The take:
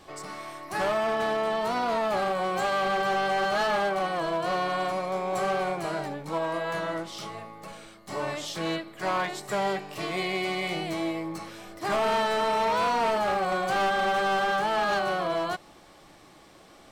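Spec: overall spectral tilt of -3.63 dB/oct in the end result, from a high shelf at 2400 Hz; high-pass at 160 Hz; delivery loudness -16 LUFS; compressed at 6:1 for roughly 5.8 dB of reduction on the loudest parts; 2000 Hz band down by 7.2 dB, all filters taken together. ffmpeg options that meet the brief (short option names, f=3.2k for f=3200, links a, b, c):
-af "highpass=160,equalizer=f=2k:t=o:g=-6,highshelf=f=2.4k:g=-8.5,acompressor=threshold=-31dB:ratio=6,volume=19dB"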